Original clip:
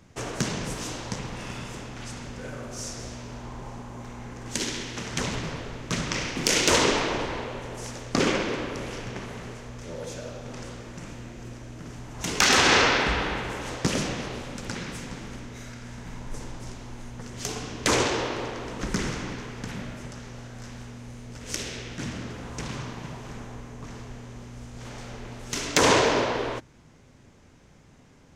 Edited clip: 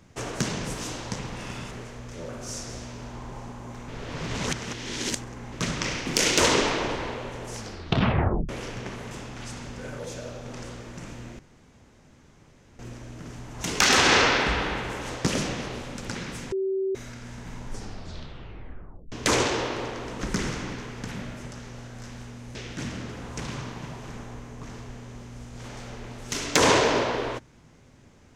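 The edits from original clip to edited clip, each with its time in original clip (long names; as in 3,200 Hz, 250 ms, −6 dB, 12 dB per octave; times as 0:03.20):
0:01.71–0:02.59: swap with 0:09.41–0:09.99
0:04.18–0:05.82: reverse
0:07.85: tape stop 0.94 s
0:11.39: splice in room tone 1.40 s
0:15.12–0:15.55: beep over 384 Hz −23.5 dBFS
0:16.26: tape stop 1.46 s
0:21.15–0:21.76: remove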